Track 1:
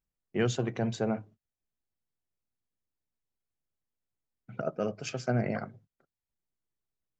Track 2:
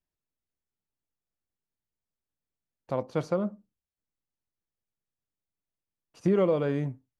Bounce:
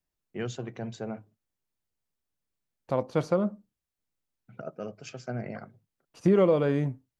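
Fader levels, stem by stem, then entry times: -6.0, +2.5 dB; 0.00, 0.00 s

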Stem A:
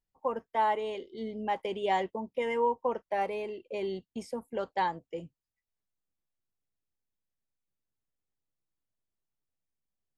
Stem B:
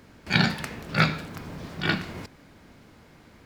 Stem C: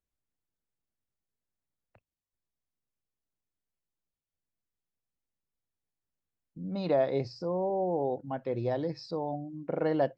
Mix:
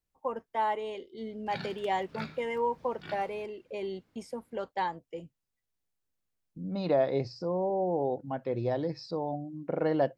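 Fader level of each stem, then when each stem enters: -2.0, -19.5, +0.5 dB; 0.00, 1.20, 0.00 s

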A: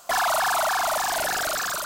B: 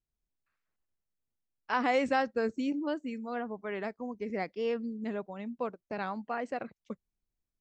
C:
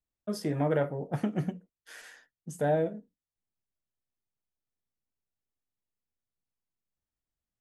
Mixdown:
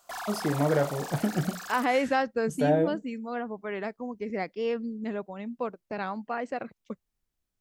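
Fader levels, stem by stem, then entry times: -14.5, +2.5, +2.5 dB; 0.00, 0.00, 0.00 s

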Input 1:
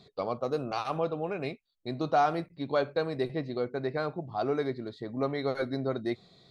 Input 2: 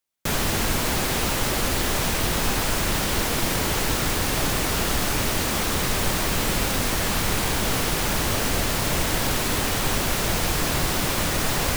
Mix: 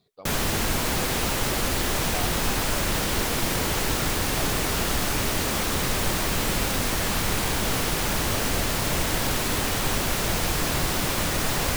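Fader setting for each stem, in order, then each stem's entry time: -12.0, -1.5 dB; 0.00, 0.00 s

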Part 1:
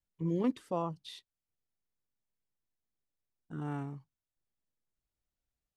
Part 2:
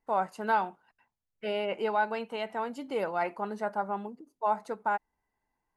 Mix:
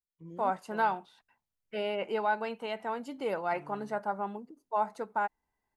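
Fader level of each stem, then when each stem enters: -14.5, -1.5 dB; 0.00, 0.30 s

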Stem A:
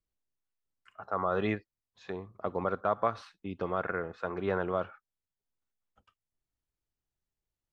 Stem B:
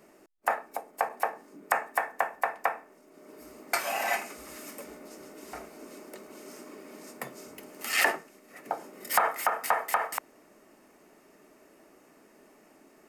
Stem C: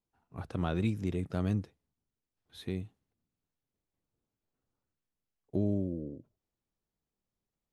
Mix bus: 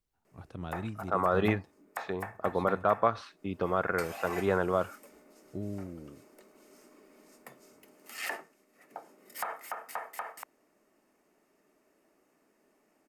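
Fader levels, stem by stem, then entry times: +3.0, -12.0, -7.5 dB; 0.00, 0.25, 0.00 s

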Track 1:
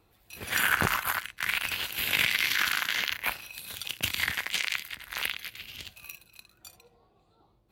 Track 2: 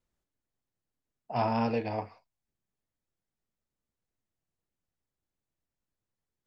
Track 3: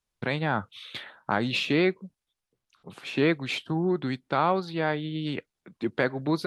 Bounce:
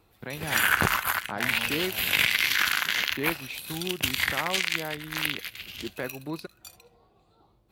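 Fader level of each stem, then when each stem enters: +2.5, -13.0, -8.5 dB; 0.00, 0.00, 0.00 s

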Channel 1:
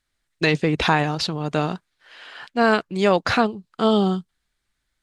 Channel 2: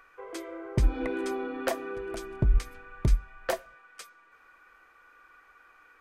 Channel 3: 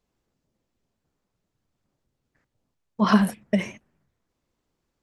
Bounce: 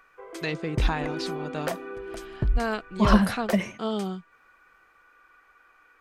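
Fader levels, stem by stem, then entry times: -11.0, -1.0, -1.5 dB; 0.00, 0.00, 0.00 s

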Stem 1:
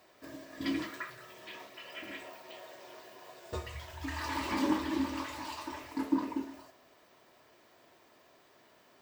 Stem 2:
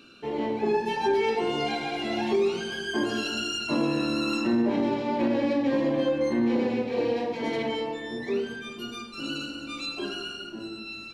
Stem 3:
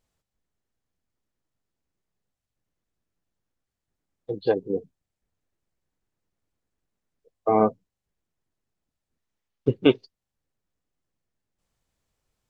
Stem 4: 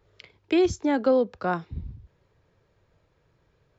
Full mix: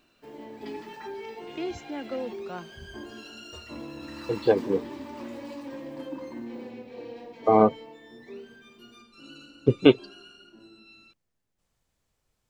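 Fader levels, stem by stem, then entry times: -9.5, -14.5, +1.5, -12.5 dB; 0.00, 0.00, 0.00, 1.05 s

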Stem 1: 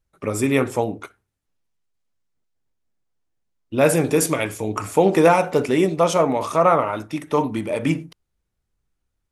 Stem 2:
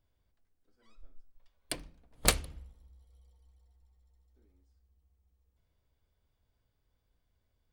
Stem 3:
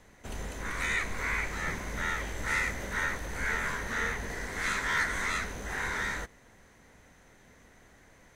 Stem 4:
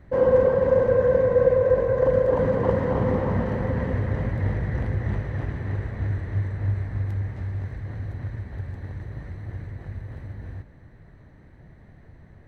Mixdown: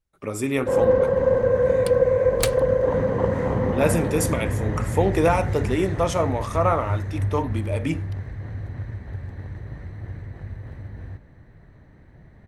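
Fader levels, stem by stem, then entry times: -5.0, +0.5, -17.0, 0.0 dB; 0.00, 0.15, 0.85, 0.55 s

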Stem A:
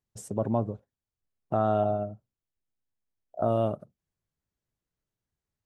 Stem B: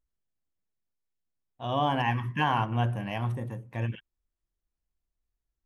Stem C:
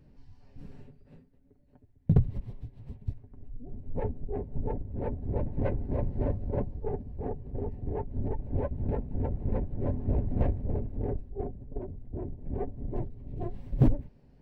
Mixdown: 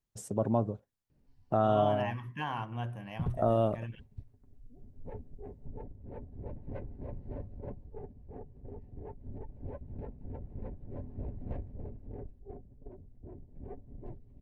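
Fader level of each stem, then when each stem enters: -1.5, -10.0, -12.0 dB; 0.00, 0.00, 1.10 s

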